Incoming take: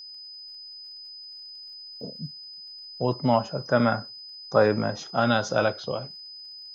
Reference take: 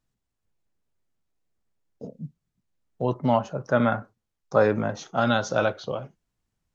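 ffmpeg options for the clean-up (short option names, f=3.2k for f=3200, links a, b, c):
-af "adeclick=t=4,bandreject=f=5k:w=30"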